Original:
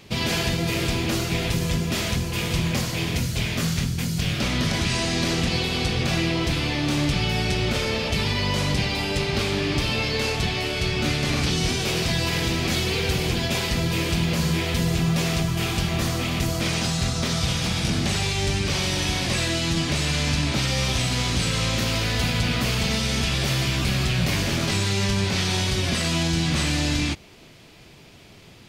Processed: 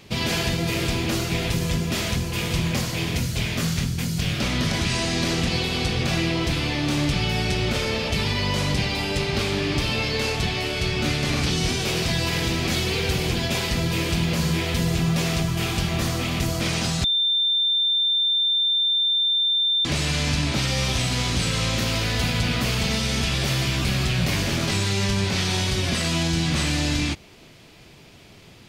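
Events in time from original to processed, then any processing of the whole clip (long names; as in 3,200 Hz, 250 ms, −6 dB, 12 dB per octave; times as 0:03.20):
0:17.04–0:19.85: beep over 3,580 Hz −18 dBFS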